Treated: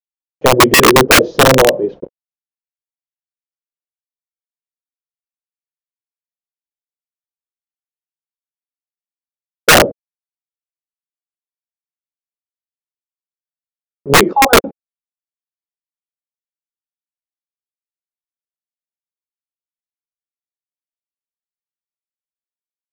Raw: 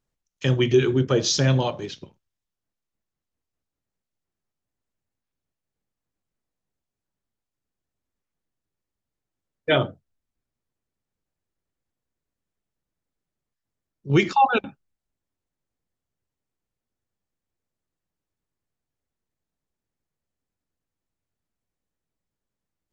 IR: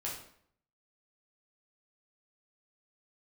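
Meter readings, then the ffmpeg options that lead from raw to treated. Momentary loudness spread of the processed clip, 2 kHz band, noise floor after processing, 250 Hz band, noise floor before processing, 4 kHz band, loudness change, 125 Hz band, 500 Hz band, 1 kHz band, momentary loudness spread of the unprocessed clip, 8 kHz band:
10 LU, +16.5 dB, below −85 dBFS, +8.0 dB, below −85 dBFS, +13.5 dB, +11.5 dB, +1.5 dB, +11.5 dB, +11.5 dB, 15 LU, can't be measured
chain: -af "crystalizer=i=3.5:c=0,apsyclip=8.5dB,highpass=200,aresample=16000,acrusher=bits=5:mix=0:aa=0.000001,aresample=44100,lowpass=frequency=510:width_type=q:width=3.6,aeval=exprs='(mod(1.41*val(0)+1,2)-1)/1.41':channel_layout=same,volume=1.5dB"

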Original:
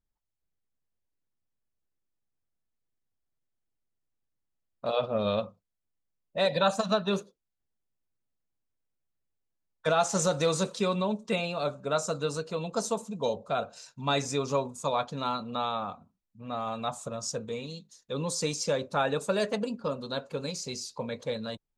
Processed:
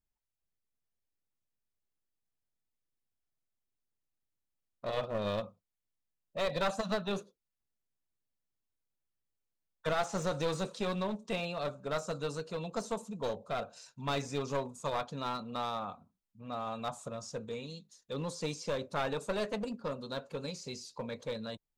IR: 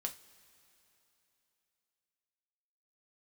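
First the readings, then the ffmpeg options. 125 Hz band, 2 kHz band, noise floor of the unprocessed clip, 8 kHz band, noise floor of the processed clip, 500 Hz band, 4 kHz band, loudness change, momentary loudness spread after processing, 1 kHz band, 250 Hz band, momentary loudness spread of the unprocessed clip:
−5.0 dB, −5.0 dB, −84 dBFS, −11.5 dB, below −85 dBFS, −6.5 dB, −7.0 dB, −6.5 dB, 9 LU, −6.0 dB, −5.5 dB, 10 LU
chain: -filter_complex "[0:a]acrossover=split=3800[link_01][link_02];[link_02]acompressor=threshold=-42dB:ratio=4:attack=1:release=60[link_03];[link_01][link_03]amix=inputs=2:normalize=0,aeval=exprs='clip(val(0),-1,0.0335)':channel_layout=same,volume=-4.5dB"

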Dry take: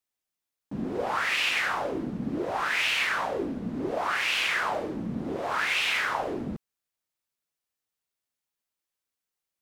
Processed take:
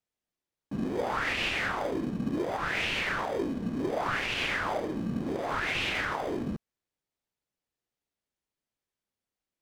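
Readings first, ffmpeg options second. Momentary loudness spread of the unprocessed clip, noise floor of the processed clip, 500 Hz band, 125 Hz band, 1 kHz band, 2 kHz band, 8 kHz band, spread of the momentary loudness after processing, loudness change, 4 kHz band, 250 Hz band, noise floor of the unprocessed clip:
9 LU, below −85 dBFS, −0.5 dB, +2.0 dB, −3.0 dB, −4.0 dB, −6.5 dB, 5 LU, −3.0 dB, −4.5 dB, +0.5 dB, below −85 dBFS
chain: -filter_complex "[0:a]asplit=2[link_01][link_02];[link_02]acrusher=samples=32:mix=1:aa=0.000001,volume=-8.5dB[link_03];[link_01][link_03]amix=inputs=2:normalize=0,highshelf=frequency=9300:gain=-12,alimiter=limit=-18dB:level=0:latency=1:release=115,volume=-2dB"

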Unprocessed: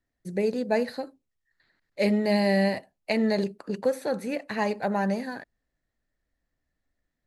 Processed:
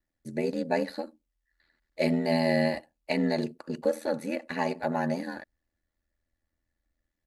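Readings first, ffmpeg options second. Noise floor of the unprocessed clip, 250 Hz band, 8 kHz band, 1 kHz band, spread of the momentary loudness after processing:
−82 dBFS, −2.5 dB, −2.5 dB, −2.0 dB, 12 LU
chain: -af "aeval=exprs='val(0)*sin(2*PI*41*n/s)':channel_layout=same,aecho=1:1:3.5:0.38"

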